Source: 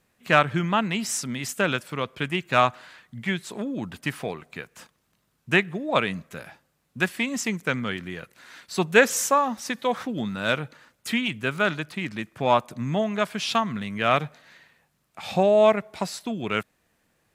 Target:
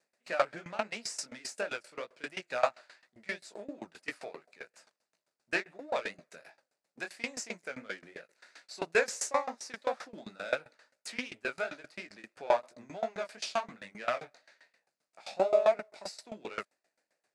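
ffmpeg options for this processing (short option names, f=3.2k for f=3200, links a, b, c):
-af "aeval=exprs='if(lt(val(0),0),0.447*val(0),val(0))':c=same,flanger=delay=16.5:depth=7.9:speed=2.9,highpass=410,equalizer=f=600:t=q:w=4:g=5,equalizer=f=1.1k:t=q:w=4:g=-6,equalizer=f=3.2k:t=q:w=4:g=-8,equalizer=f=4.7k:t=q:w=4:g=5,lowpass=f=9.5k:w=0.5412,lowpass=f=9.5k:w=1.3066,aeval=exprs='val(0)*pow(10,-21*if(lt(mod(7.6*n/s,1),2*abs(7.6)/1000),1-mod(7.6*n/s,1)/(2*abs(7.6)/1000),(mod(7.6*n/s,1)-2*abs(7.6)/1000)/(1-2*abs(7.6)/1000))/20)':c=same,volume=3dB"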